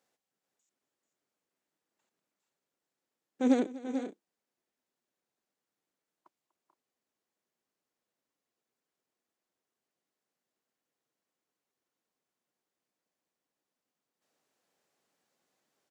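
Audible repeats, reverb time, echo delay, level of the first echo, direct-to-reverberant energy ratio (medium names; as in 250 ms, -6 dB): 3, no reverb, 244 ms, -19.0 dB, no reverb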